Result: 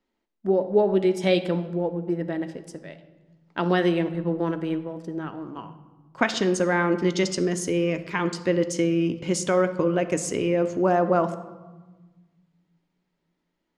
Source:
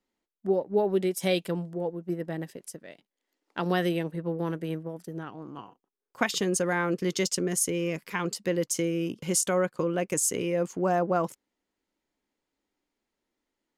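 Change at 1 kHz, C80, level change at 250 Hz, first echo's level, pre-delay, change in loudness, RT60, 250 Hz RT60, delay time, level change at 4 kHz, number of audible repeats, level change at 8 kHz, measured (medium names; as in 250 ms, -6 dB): +4.5 dB, 14.0 dB, +5.5 dB, no echo, 3 ms, +4.0 dB, 1.3 s, 2.0 s, no echo, +2.0 dB, no echo, -4.5 dB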